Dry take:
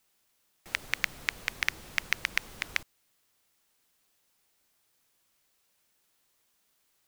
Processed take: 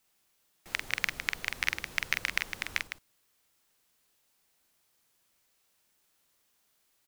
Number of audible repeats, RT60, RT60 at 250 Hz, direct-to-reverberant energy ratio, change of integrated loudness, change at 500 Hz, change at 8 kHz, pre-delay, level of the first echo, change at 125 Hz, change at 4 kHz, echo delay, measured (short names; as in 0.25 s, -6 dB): 2, none, none, none, -0.5 dB, 0.0 dB, 0.0 dB, none, -5.5 dB, 0.0 dB, 0.0 dB, 45 ms